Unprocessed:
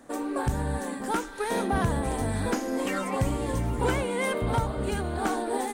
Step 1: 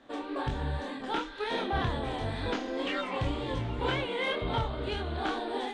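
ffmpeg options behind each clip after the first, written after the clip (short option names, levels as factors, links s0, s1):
-af "lowpass=f=3500:t=q:w=3.2,equalizer=f=200:t=o:w=0.28:g=-8,flanger=delay=22.5:depth=6.6:speed=2,volume=0.841"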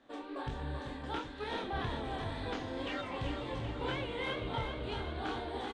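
-af "aecho=1:1:387|774|1161|1548|1935|2322|2709:0.447|0.25|0.14|0.0784|0.0439|0.0246|0.0138,volume=0.447"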